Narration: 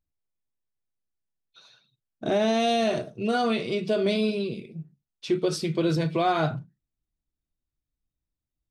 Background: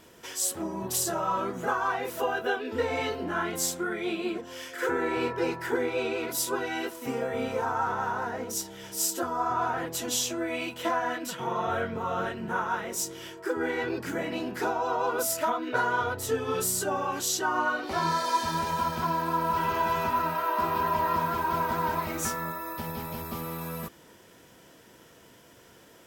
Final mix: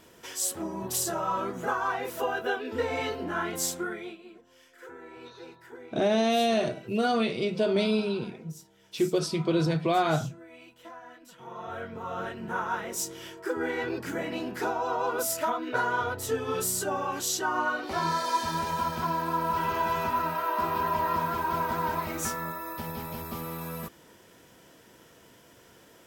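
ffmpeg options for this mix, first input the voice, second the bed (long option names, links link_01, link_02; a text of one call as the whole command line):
ffmpeg -i stem1.wav -i stem2.wav -filter_complex "[0:a]adelay=3700,volume=-1dB[link_01];[1:a]volume=16dB,afade=type=out:start_time=3.81:duration=0.37:silence=0.141254,afade=type=in:start_time=11.27:duration=1.44:silence=0.141254[link_02];[link_01][link_02]amix=inputs=2:normalize=0" out.wav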